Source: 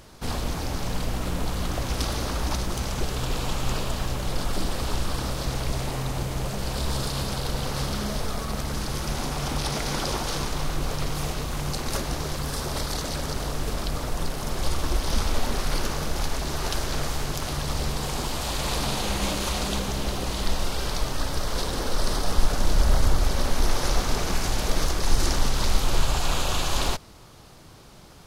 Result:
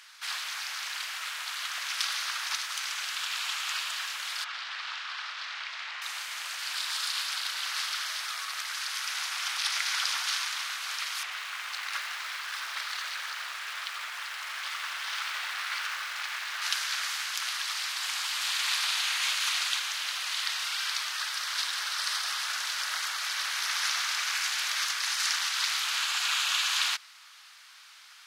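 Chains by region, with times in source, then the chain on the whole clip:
0:04.44–0:06.02: running median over 5 samples + high-pass filter 560 Hz + high-frequency loss of the air 110 metres
0:11.23–0:16.62: bass and treble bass +15 dB, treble −12 dB + feedback echo at a low word length 86 ms, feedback 35%, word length 5 bits, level −11 dB
whole clip: high-pass filter 1,500 Hz 24 dB per octave; high-shelf EQ 5,700 Hz −11.5 dB; level +7 dB

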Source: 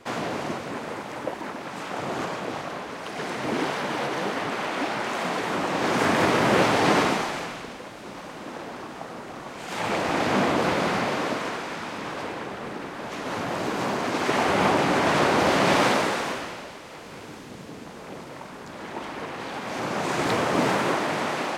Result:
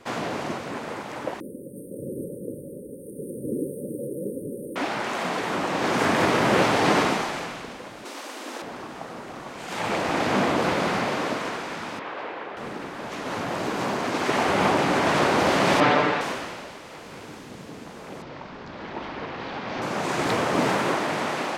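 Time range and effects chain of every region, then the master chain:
0:01.40–0:04.76: linear-phase brick-wall band-stop 580–8,500 Hz + high-shelf EQ 8,600 Hz +9.5 dB
0:08.05–0:08.62: linear-phase brick-wall high-pass 220 Hz + high-shelf EQ 3,000 Hz +10.5 dB
0:11.99–0:12.57: low-pass filter 11,000 Hz + three-way crossover with the lows and the highs turned down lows −15 dB, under 320 Hz, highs −22 dB, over 3,800 Hz
0:15.80–0:16.21: low-pass filter 3,200 Hz + comb filter 6.8 ms, depth 92%
0:18.22–0:19.82: low-pass filter 5,100 Hz 24 dB per octave + low-shelf EQ 74 Hz +8.5 dB
whole clip: no processing

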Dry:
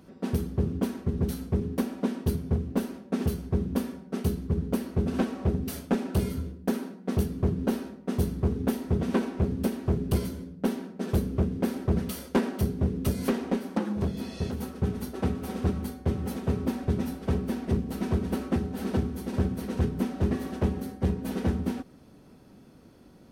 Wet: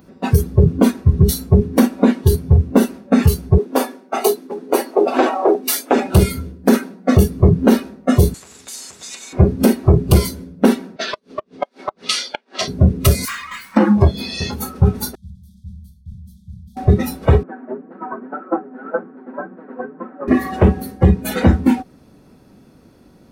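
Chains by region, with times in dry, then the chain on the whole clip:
0:03.58–0:05.96: Butterworth high-pass 260 Hz + dynamic equaliser 790 Hz, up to +6 dB, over −48 dBFS, Q 1.9
0:08.34–0:09.33: meter weighting curve ITU-R 468 + downward compressor 8 to 1, threshold −43 dBFS + every bin compressed towards the loudest bin 2 to 1
0:10.96–0:12.68: band-pass filter 440–6,600 Hz + parametric band 3,900 Hz +6.5 dB 1.4 octaves + gate with flip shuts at −23 dBFS, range −39 dB
0:13.25–0:13.77: drawn EQ curve 110 Hz 0 dB, 340 Hz −30 dB, 700 Hz −22 dB, 1,000 Hz +6 dB + tube saturation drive 43 dB, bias 0.75
0:15.15–0:16.77: guitar amp tone stack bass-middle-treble 10-0-1 + transient designer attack −4 dB, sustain +4 dB + linear-phase brick-wall band-stop 220–3,100 Hz
0:17.43–0:20.28: elliptic band-pass filter 240–1,600 Hz, stop band 60 dB + spectral tilt +1.5 dB per octave + flanger 1.9 Hz, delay 5.4 ms, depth 2.8 ms, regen +24%
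whole clip: notch filter 3,100 Hz, Q 16; noise reduction from a noise print of the clip's start 16 dB; boost into a limiter +23.5 dB; level −2 dB

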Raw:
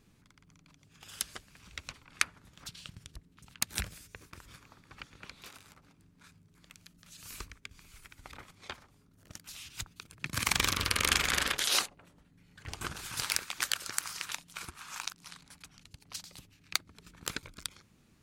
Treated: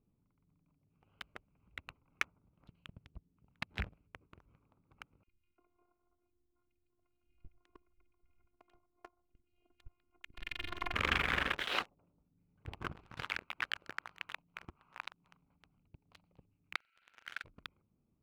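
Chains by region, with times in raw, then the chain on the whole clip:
0:05.23–0:10.94: phases set to zero 353 Hz + high-frequency loss of the air 120 metres + three-band delay without the direct sound highs, lows, mids 40/350 ms, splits 220/2,100 Hz
0:16.76–0:17.44: linear delta modulator 32 kbit/s, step −33.5 dBFS + linear-phase brick-wall high-pass 1,300 Hz + flutter between parallel walls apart 7.6 metres, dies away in 0.68 s
whole clip: adaptive Wiener filter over 25 samples; low-pass filter 2,900 Hz 24 dB per octave; leveller curve on the samples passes 2; level −8 dB

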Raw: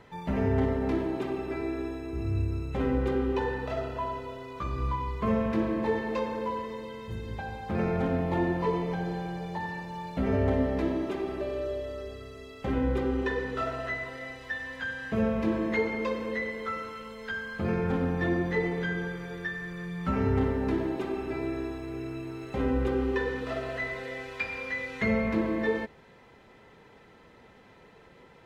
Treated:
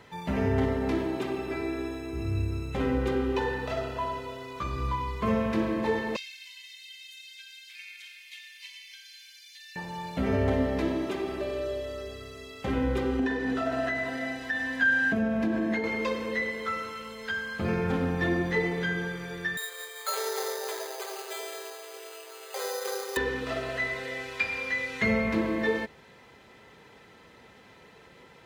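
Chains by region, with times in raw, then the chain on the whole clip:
0:06.16–0:09.76: Butterworth high-pass 2,300 Hz + comb filter 1.9 ms, depth 53%
0:13.19–0:15.84: downward compressor 4 to 1, threshold −32 dBFS + hollow resonant body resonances 260/700/1,600 Hz, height 13 dB, ringing for 35 ms
0:19.57–0:23.17: Chebyshev high-pass filter 420 Hz, order 6 + bad sample-rate conversion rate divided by 8×, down filtered, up hold
whole clip: high-pass filter 48 Hz; high-shelf EQ 2,200 Hz +8 dB

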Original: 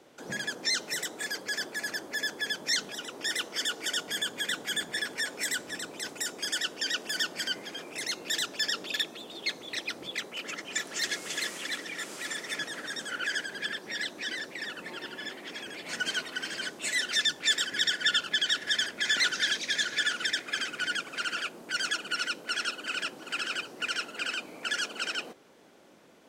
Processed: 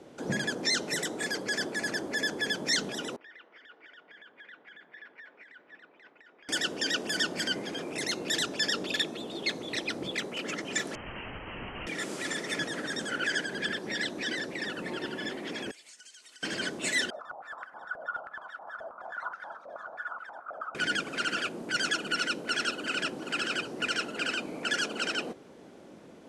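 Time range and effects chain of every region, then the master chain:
0:03.16–0:06.49: first difference + downward compressor 4 to 1, threshold −36 dBFS + low-pass filter 2,100 Hz 24 dB per octave
0:10.95–0:11.87: low-shelf EQ 450 Hz +9 dB + wrap-around overflow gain 34 dB + voice inversion scrambler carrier 3,100 Hz
0:15.71–0:16.43: resonant band-pass 7,900 Hz, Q 1.6 + downward compressor 10 to 1, threshold −48 dBFS
0:17.10–0:20.75: drawn EQ curve 140 Hz 0 dB, 380 Hz −7 dB, 670 Hz +9 dB, 1,300 Hz +10 dB, 1,900 Hz −22 dB, 6,900 Hz −14 dB, 13,000 Hz +6 dB + band-pass on a step sequencer 9.4 Hz 620–2,000 Hz
whole clip: Butterworth low-pass 12,000 Hz 72 dB per octave; tilt shelving filter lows +5.5 dB, about 630 Hz; level +5.5 dB

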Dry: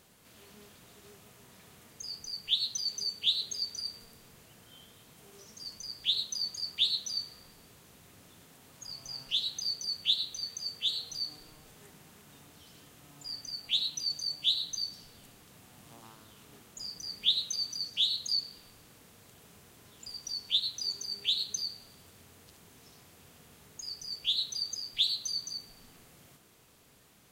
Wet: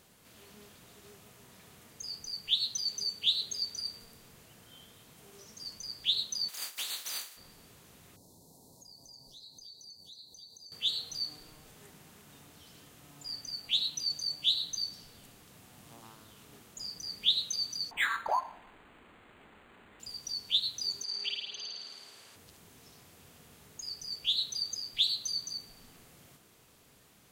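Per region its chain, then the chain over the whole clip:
0:06.48–0:07.36: compressing power law on the bin magnitudes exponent 0.31 + high-pass filter 1,300 Hz 6 dB per octave + downward compressor 12 to 1, threshold −32 dBFS
0:08.16–0:10.72: Chebyshev band-stop filter 960–4,100 Hz, order 4 + downward compressor 3 to 1, threshold −54 dBFS + single-tap delay 318 ms −9.5 dB
0:17.91–0:20.00: high-shelf EQ 5,700 Hz +5.5 dB + phaser with its sweep stopped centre 310 Hz, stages 4 + linearly interpolated sample-rate reduction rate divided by 8×
0:21.03–0:22.36: meter weighting curve A + treble cut that deepens with the level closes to 690 Hz, closed at −25 dBFS + flutter between parallel walls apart 9.3 metres, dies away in 1.4 s
whole clip: no processing

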